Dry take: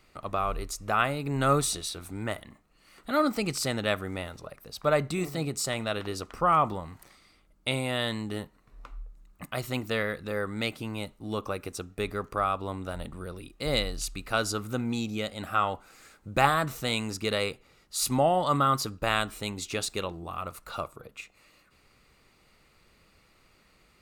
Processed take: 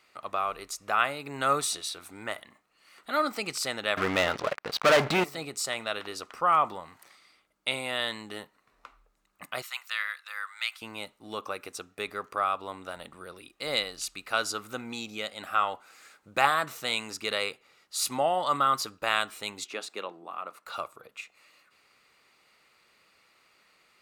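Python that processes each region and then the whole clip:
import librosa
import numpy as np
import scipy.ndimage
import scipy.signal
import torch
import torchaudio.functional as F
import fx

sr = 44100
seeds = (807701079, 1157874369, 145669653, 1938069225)

y = fx.chain(x, sr, fx.air_absorb(metres=220.0),
    fx.leveller(passes=5), at=(3.97, 5.24))
y = fx.chain(y, sr, fx.highpass(hz=1100.0, slope=24),
    fx.quant_float(bits=8), at=(9.62, 10.82))
y = fx.chain(y, sr, fx.highpass(hz=190.0, slope=24),
    fx.high_shelf(hz=2900.0, db=-11.0), at=(19.64, 20.66))
y = fx.highpass(y, sr, hz=1000.0, slope=6)
y = fx.high_shelf(y, sr, hz=5300.0, db=-5.5)
y = y * 10.0 ** (3.0 / 20.0)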